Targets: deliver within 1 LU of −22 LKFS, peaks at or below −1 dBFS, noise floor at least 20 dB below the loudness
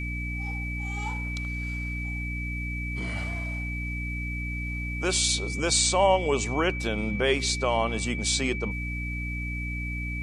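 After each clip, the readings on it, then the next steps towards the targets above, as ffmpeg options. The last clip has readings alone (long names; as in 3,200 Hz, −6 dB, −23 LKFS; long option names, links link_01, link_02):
mains hum 60 Hz; hum harmonics up to 300 Hz; level of the hum −30 dBFS; interfering tone 2,300 Hz; level of the tone −34 dBFS; integrated loudness −27.5 LKFS; sample peak −10.0 dBFS; target loudness −22.0 LKFS
→ -af "bandreject=frequency=60:width_type=h:width=4,bandreject=frequency=120:width_type=h:width=4,bandreject=frequency=180:width_type=h:width=4,bandreject=frequency=240:width_type=h:width=4,bandreject=frequency=300:width_type=h:width=4"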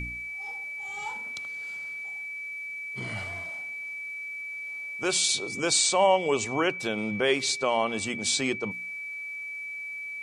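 mains hum none found; interfering tone 2,300 Hz; level of the tone −34 dBFS
→ -af "bandreject=frequency=2300:width=30"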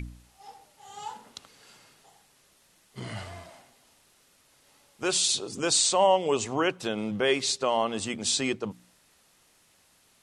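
interfering tone none found; integrated loudness −26.0 LKFS; sample peak −10.0 dBFS; target loudness −22.0 LKFS
→ -af "volume=4dB"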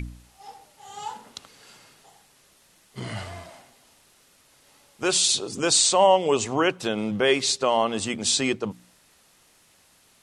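integrated loudness −22.0 LKFS; sample peak −6.0 dBFS; background noise floor −60 dBFS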